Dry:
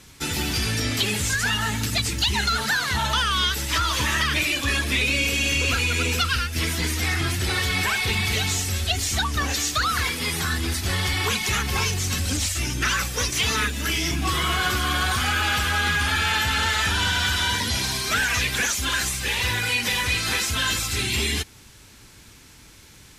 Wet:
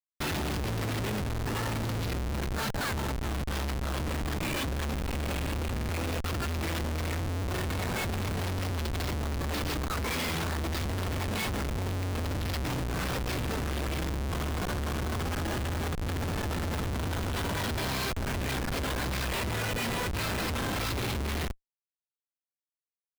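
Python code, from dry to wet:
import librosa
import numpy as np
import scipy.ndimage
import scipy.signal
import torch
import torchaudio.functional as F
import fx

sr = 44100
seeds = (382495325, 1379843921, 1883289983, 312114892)

y = fx.rev_schroeder(x, sr, rt60_s=0.33, comb_ms=31, drr_db=11.0)
y = fx.over_compress(y, sr, threshold_db=-28.0, ratio=-0.5)
y = scipy.signal.sosfilt(scipy.signal.butter(16, 5300.0, 'lowpass', fs=sr, output='sos'), y)
y = fx.hum_notches(y, sr, base_hz=60, count=8)
y = fx.schmitt(y, sr, flips_db=-29.5)
y = fx.buffer_glitch(y, sr, at_s=(1.31, 5.75), block=2048, repeats=2)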